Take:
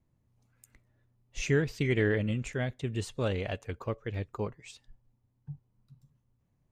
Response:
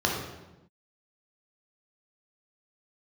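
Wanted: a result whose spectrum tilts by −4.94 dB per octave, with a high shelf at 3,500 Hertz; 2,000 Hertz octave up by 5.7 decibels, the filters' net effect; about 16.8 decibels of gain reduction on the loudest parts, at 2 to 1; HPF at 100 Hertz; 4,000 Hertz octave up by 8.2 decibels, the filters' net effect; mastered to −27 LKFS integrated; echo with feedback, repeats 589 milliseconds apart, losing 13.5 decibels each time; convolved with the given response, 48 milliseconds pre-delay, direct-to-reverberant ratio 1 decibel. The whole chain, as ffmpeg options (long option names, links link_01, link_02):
-filter_complex "[0:a]highpass=100,equalizer=frequency=2000:width_type=o:gain=4,highshelf=frequency=3500:gain=4.5,equalizer=frequency=4000:width_type=o:gain=6.5,acompressor=threshold=-53dB:ratio=2,aecho=1:1:589|1178:0.211|0.0444,asplit=2[link_01][link_02];[1:a]atrim=start_sample=2205,adelay=48[link_03];[link_02][link_03]afir=irnorm=-1:irlink=0,volume=-14dB[link_04];[link_01][link_04]amix=inputs=2:normalize=0,volume=15.5dB"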